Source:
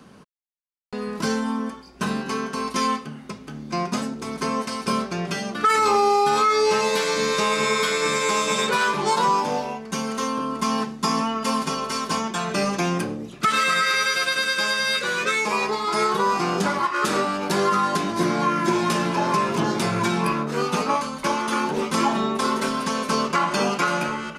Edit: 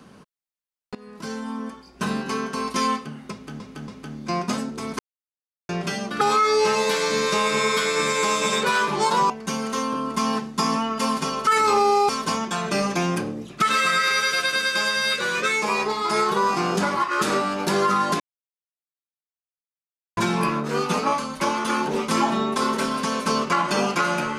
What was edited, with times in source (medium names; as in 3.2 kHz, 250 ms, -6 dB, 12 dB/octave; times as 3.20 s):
0.95–2.14 s: fade in, from -18 dB
3.32–3.60 s: loop, 3 plays
4.43–5.13 s: mute
5.65–6.27 s: move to 11.92 s
9.36–9.75 s: delete
18.03–20.00 s: mute